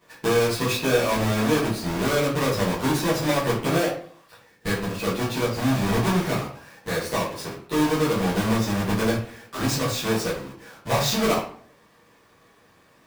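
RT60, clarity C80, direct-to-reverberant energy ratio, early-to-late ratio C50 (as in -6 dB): 0.55 s, 9.5 dB, -11.0 dB, 6.0 dB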